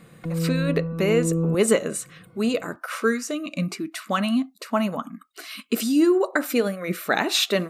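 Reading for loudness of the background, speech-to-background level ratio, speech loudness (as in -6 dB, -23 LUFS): -26.5 LUFS, 2.0 dB, -24.5 LUFS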